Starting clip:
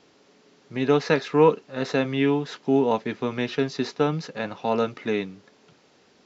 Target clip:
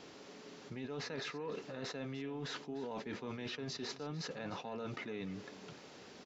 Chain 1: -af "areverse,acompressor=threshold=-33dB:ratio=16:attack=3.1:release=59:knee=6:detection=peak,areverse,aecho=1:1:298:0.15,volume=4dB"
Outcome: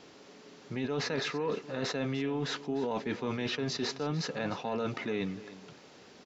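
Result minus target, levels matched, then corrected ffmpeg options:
downward compressor: peak gain reduction −10 dB
-af "areverse,acompressor=threshold=-43.5dB:ratio=16:attack=3.1:release=59:knee=6:detection=peak,areverse,aecho=1:1:298:0.15,volume=4dB"

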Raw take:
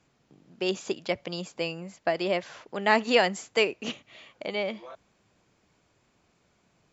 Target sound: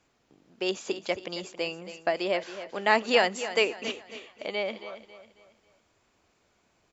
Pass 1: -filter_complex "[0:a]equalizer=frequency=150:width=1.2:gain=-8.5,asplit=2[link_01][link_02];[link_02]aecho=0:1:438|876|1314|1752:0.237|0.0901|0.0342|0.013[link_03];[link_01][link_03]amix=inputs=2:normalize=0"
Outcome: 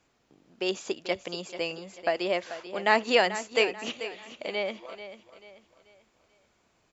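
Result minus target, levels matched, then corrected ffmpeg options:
echo 165 ms late
-filter_complex "[0:a]equalizer=frequency=150:width=1.2:gain=-8.5,asplit=2[link_01][link_02];[link_02]aecho=0:1:273|546|819|1092:0.237|0.0901|0.0342|0.013[link_03];[link_01][link_03]amix=inputs=2:normalize=0"

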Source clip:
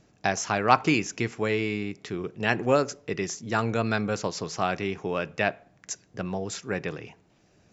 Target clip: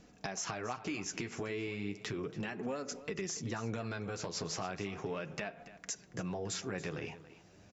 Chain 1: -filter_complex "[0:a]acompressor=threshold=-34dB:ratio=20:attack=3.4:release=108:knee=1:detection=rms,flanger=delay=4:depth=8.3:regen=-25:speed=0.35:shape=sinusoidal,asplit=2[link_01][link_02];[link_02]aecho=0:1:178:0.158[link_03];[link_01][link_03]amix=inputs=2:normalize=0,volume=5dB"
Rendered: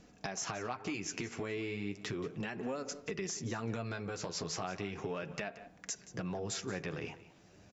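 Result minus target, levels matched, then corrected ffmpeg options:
echo 103 ms early
-filter_complex "[0:a]acompressor=threshold=-34dB:ratio=20:attack=3.4:release=108:knee=1:detection=rms,flanger=delay=4:depth=8.3:regen=-25:speed=0.35:shape=sinusoidal,asplit=2[link_01][link_02];[link_02]aecho=0:1:281:0.158[link_03];[link_01][link_03]amix=inputs=2:normalize=0,volume=5dB"

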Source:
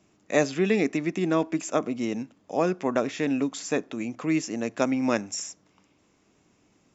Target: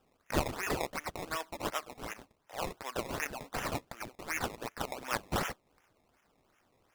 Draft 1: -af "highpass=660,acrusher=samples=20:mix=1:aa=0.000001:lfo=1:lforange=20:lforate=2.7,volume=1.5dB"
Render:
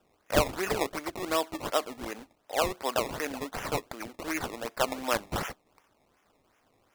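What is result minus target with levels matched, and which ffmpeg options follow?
500 Hz band +3.0 dB
-af "highpass=1700,acrusher=samples=20:mix=1:aa=0.000001:lfo=1:lforange=20:lforate=2.7,volume=1.5dB"

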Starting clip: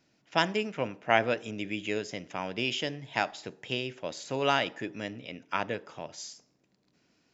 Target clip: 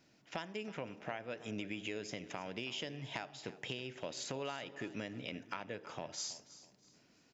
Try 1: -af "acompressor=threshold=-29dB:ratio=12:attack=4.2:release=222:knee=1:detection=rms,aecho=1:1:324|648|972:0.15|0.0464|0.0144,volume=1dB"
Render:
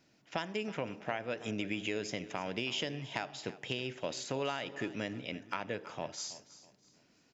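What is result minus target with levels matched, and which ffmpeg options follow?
downward compressor: peak gain reduction −6 dB
-af "acompressor=threshold=-35.5dB:ratio=12:attack=4.2:release=222:knee=1:detection=rms,aecho=1:1:324|648|972:0.15|0.0464|0.0144,volume=1dB"

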